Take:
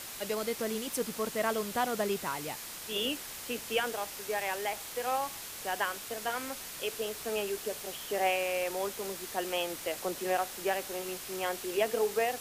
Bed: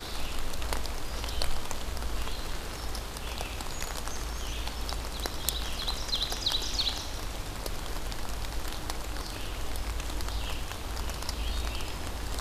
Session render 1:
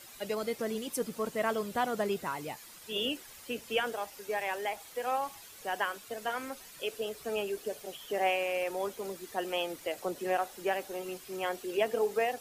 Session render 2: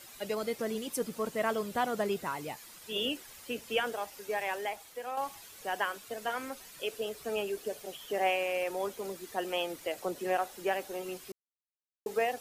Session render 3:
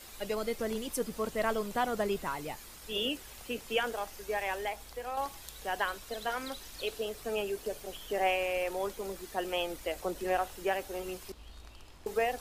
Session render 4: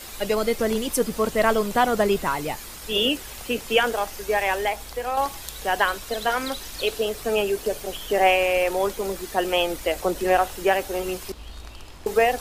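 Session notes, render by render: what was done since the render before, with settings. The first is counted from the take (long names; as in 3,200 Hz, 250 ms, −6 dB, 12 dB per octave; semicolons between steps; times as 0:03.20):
broadband denoise 11 dB, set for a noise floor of −43 dBFS
0:04.54–0:05.17: fade out, to −7.5 dB; 0:11.32–0:12.06: silence
mix in bed −18.5 dB
level +11 dB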